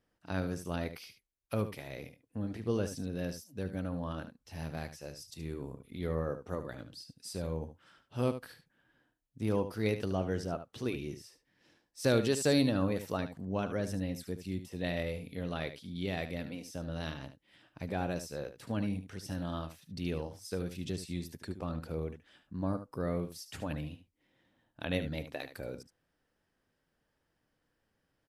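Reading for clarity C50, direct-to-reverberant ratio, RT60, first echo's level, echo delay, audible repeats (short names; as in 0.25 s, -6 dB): none, none, none, -11.0 dB, 74 ms, 1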